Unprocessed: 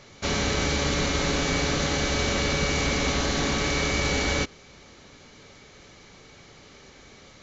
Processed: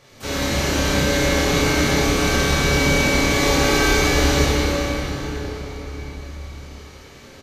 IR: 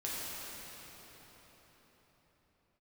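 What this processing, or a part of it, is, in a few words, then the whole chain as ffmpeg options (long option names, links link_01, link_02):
shimmer-style reverb: -filter_complex "[0:a]asettb=1/sr,asplit=3[link_01][link_02][link_03];[link_01]atrim=end=3.314[link_04];[link_02]atrim=start=3.31:end=3.97,asetpts=PTS-STARTPTS,afade=type=in:duration=0.004:curve=qsin,afade=type=out:start_time=0.656:duration=0.004:curve=qsin,aecho=1:1:2.5:0.92,atrim=end_sample=29106[link_05];[link_03]atrim=start=3.966[link_06];[link_04][link_05]acrossfade=duration=0.004:curve1=hsin:curve2=qsin[link_07];[link_07][link_06]acrossfade=duration=0.004:curve1=qsin:curve2=hsin,asplit=2[link_08][link_09];[link_09]asetrate=88200,aresample=44100,atempo=0.5,volume=-9dB[link_10];[link_08][link_10]amix=inputs=2:normalize=0[link_11];[1:a]atrim=start_sample=2205[link_12];[link_11][link_12]afir=irnorm=-1:irlink=0,asplit=2[link_13][link_14];[link_14]adelay=30,volume=-3.5dB[link_15];[link_13][link_15]amix=inputs=2:normalize=0"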